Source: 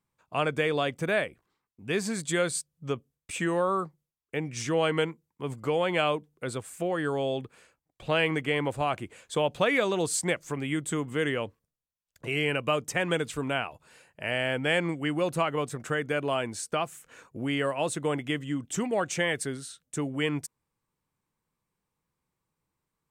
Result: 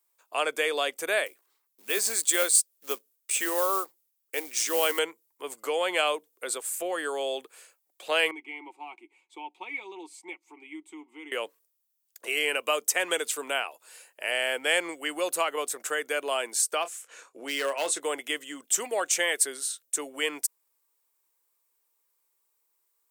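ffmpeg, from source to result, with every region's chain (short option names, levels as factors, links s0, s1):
-filter_complex "[0:a]asettb=1/sr,asplit=3[s0][s1][s2];[s0]atrim=end=1.264[s3];[s1]atrim=start=1.26:end=4.99,asetpts=PTS-STARTPTS,afade=t=in:d=0.004:c=qsin,afade=t=out:st=3.726:d=0.004:c=qsin,bandreject=f=160:w=5.1,acrusher=bits=5:mode=log:mix=0:aa=0.000001[s4];[s2]atrim=start=4.986[s5];[s3][s4]acrossfade=d=0.004:c1=hsin:c2=qsin[s6];[s6][s5]acrossfade=d=0.004:c1=qsin:c2=hsin,asettb=1/sr,asplit=3[s7][s8][s9];[s7]atrim=end=8.314[s10];[s8]atrim=start=8.31:end=11.32,asetpts=PTS-STARTPTS,afade=t=in:d=0.004:c=qsin,afade=t=out:st=3.006:d=0.004:c=qsin,asplit=3[s11][s12][s13];[s11]bandpass=f=300:t=q:w=8,volume=1[s14];[s12]bandpass=f=870:t=q:w=8,volume=0.501[s15];[s13]bandpass=f=2240:t=q:w=8,volume=0.355[s16];[s14][s15][s16]amix=inputs=3:normalize=0,aecho=1:1:5.4:0.51,atrim=end_sample=132741[s17];[s9]atrim=start=11.316[s18];[s10][s17]acrossfade=d=0.004:c1=hsin:c2=qsin[s19];[s19][s18]acrossfade=d=0.004:c1=qsin:c2=hsin,asettb=1/sr,asplit=3[s20][s21][s22];[s20]atrim=end=16.824[s23];[s21]atrim=start=16.82:end=18,asetpts=PTS-STARTPTS,afade=t=in:d=0.004:c=qsin,afade=t=out:st=1.176:d=0.004:c=qsin,lowpass=7500,asoftclip=type=hard:threshold=0.075,asplit=2[s24][s25];[s25]adelay=29,volume=0.266[s26];[s24][s26]amix=inputs=2:normalize=0,atrim=end_sample=52038[s27];[s22]atrim=start=17.996[s28];[s23][s27]acrossfade=d=0.004:c1=hsin:c2=qsin[s29];[s29][s28]acrossfade=d=0.004:c1=qsin:c2=hsin,highpass=f=380:w=0.5412,highpass=f=380:w=1.3066,aemphasis=mode=production:type=75fm"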